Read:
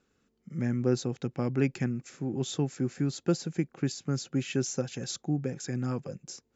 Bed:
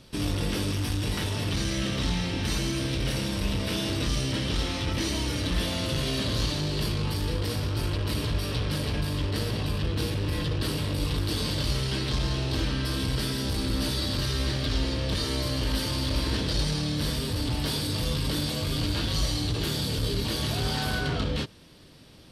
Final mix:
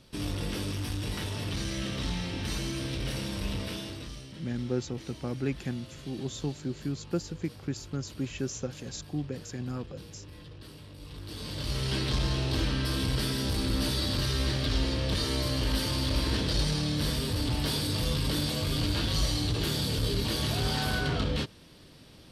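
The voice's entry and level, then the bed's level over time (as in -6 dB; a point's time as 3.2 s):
3.85 s, -4.0 dB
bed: 3.6 s -5 dB
4.33 s -19 dB
10.98 s -19 dB
11.91 s -1 dB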